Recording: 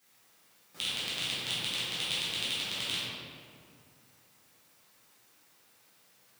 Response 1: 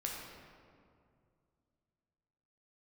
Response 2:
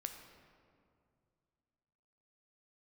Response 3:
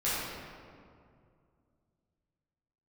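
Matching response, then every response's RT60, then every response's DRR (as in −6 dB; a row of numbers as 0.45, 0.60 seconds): 3; 2.3, 2.3, 2.3 seconds; −2.0, 5.0, −11.5 decibels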